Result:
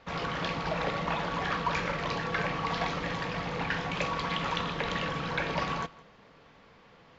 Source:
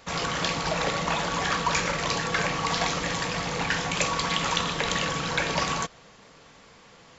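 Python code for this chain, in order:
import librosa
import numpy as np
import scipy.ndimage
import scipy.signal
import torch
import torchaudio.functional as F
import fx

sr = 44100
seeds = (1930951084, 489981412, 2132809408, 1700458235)

y = fx.air_absorb(x, sr, metres=220.0)
y = y + 10.0 ** (-21.5 / 20.0) * np.pad(y, (int(164 * sr / 1000.0), 0))[:len(y)]
y = y * 10.0 ** (-3.0 / 20.0)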